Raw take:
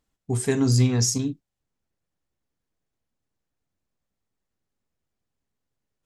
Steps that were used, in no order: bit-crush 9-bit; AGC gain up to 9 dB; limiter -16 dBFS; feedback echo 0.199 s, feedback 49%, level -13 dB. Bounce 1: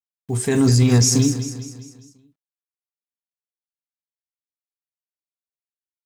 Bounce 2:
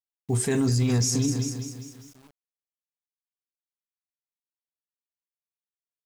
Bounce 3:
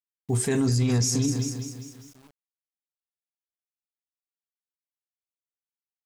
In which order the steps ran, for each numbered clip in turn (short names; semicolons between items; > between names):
bit-crush > feedback echo > limiter > AGC; AGC > feedback echo > limiter > bit-crush; AGC > feedback echo > bit-crush > limiter